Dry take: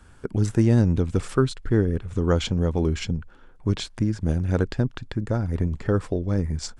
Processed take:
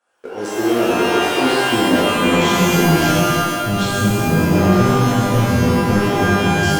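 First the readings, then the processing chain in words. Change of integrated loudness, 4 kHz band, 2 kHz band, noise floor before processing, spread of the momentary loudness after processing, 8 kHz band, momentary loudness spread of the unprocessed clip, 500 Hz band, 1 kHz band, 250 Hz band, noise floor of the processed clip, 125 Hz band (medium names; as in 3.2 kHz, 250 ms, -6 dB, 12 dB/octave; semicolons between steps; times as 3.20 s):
+9.0 dB, +15.0 dB, +19.5 dB, -49 dBFS, 5 LU, +15.0 dB, 8 LU, +9.5 dB, +20.0 dB, +9.0 dB, -28 dBFS, +4.0 dB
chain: high-pass sweep 600 Hz -> 130 Hz, 0.01–3.18 s; waveshaping leveller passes 3; pitch-shifted reverb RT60 1.7 s, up +12 st, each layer -2 dB, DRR -9.5 dB; trim -13 dB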